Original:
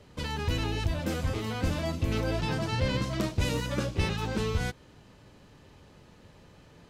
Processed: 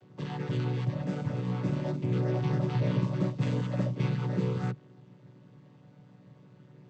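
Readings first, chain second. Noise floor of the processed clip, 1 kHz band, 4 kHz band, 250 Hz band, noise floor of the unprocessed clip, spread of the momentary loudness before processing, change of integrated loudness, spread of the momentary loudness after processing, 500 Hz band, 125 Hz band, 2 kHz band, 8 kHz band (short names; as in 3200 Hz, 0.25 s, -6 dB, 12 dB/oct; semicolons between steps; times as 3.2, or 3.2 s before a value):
-57 dBFS, -4.5 dB, -12.0 dB, +1.5 dB, -56 dBFS, 3 LU, 0.0 dB, 5 LU, -2.0 dB, +2.5 dB, -8.5 dB, under -10 dB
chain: chord vocoder minor triad, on B2; gain +2.5 dB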